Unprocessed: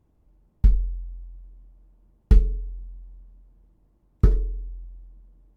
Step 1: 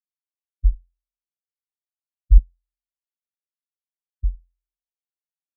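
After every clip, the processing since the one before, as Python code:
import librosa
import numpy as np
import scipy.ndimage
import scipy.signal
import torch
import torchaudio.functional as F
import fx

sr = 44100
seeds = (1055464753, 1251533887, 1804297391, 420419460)

y = fx.spectral_expand(x, sr, expansion=4.0)
y = F.gain(torch.from_numpy(y), 2.5).numpy()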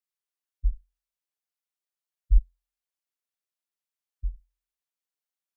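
y = fx.peak_eq(x, sr, hz=85.0, db=-14.5, octaves=2.8)
y = F.gain(torch.from_numpy(y), 2.0).numpy()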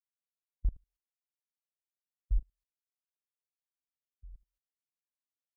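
y = fx.level_steps(x, sr, step_db=22)
y = F.gain(torch.from_numpy(y), -2.5).numpy()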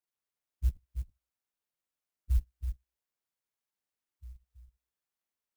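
y = fx.partial_stretch(x, sr, pct=81)
y = y + 10.0 ** (-8.0 / 20.0) * np.pad(y, (int(327 * sr / 1000.0), 0))[:len(y)]
y = fx.clock_jitter(y, sr, seeds[0], jitter_ms=0.081)
y = F.gain(torch.from_numpy(y), 3.0).numpy()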